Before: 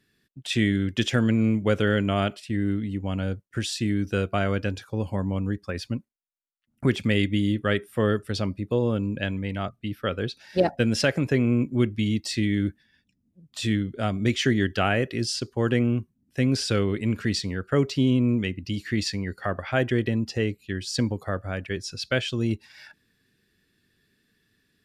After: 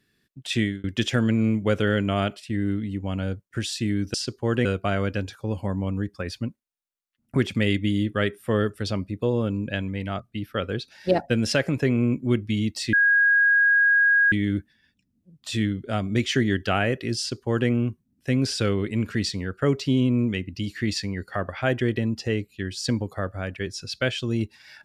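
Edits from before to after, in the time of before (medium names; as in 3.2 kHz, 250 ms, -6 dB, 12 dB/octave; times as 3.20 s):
0.59–0.84 s: fade out
12.42 s: add tone 1.64 kHz -15 dBFS 1.39 s
15.28–15.79 s: copy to 4.14 s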